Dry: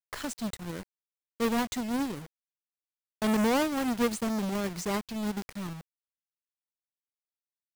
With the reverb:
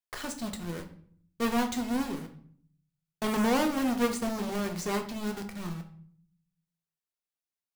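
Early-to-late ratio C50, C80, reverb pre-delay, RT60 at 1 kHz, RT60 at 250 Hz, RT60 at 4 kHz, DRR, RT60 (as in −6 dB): 10.5 dB, 15.0 dB, 3 ms, 0.55 s, 0.80 s, 0.40 s, 3.5 dB, 0.55 s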